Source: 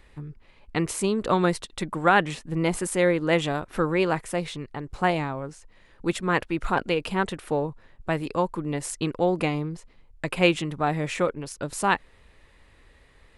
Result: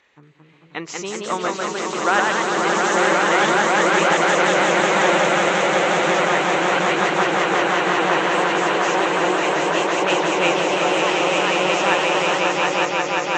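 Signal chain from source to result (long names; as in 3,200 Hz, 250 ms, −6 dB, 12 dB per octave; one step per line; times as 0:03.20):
hearing-aid frequency compression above 3,500 Hz 1.5 to 1
echo that builds up and dies away 179 ms, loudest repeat 8, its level −3.5 dB
delay with pitch and tempo change per echo 231 ms, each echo +1 semitone, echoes 2
meter weighting curve A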